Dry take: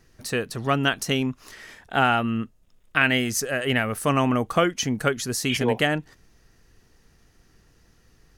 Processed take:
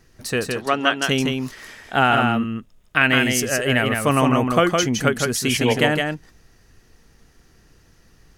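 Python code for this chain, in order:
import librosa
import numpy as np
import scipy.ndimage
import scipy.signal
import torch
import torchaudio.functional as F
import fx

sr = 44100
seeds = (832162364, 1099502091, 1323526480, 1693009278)

y = fx.bandpass_edges(x, sr, low_hz=320.0, high_hz=7200.0, at=(0.52, 1.04))
y = y + 10.0 ** (-4.0 / 20.0) * np.pad(y, (int(162 * sr / 1000.0), 0))[:len(y)]
y = y * 10.0 ** (3.0 / 20.0)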